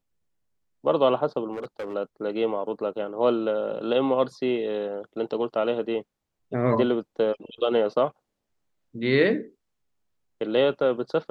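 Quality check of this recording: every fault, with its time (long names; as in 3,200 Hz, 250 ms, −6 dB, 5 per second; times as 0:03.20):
0:01.52–0:01.94: clipping −28.5 dBFS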